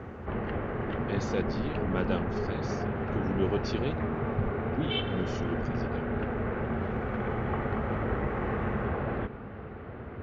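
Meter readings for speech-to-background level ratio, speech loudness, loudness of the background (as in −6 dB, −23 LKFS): −3.5 dB, −36.0 LKFS, −32.5 LKFS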